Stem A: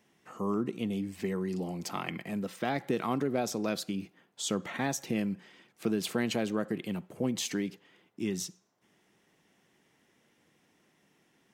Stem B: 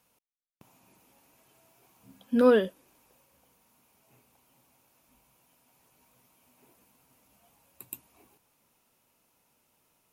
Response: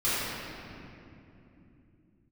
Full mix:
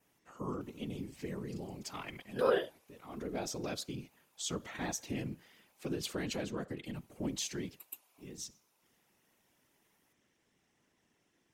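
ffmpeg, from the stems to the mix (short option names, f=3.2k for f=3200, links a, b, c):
-filter_complex "[0:a]equalizer=f=6.5k:t=o:w=0.84:g=3.5,volume=-1.5dB[a];[1:a]highpass=510,volume=0dB,asplit=3[b][c][d];[b]atrim=end=6.03,asetpts=PTS-STARTPTS,afade=t=out:st=6.026:d=0.004:c=hsin[e];[c]atrim=start=6.03:end=6.98,asetpts=PTS-STARTPTS,volume=0[f];[d]atrim=start=6.98,asetpts=PTS-STARTPTS,afade=t=in:d=0.004:c=hsin[g];[e][f][g]concat=n=3:v=0:a=1,asplit=2[h][i];[i]apad=whole_len=508747[j];[a][j]sidechaincompress=threshold=-58dB:ratio=8:attack=5.2:release=308[k];[k][h]amix=inputs=2:normalize=0,afftfilt=real='hypot(re,im)*cos(2*PI*random(0))':imag='hypot(re,im)*sin(2*PI*random(1))':win_size=512:overlap=0.75,adynamicequalizer=threshold=0.00126:dfrequency=4100:dqfactor=0.8:tfrequency=4100:tqfactor=0.8:attack=5:release=100:ratio=0.375:range=1.5:mode=boostabove:tftype=bell"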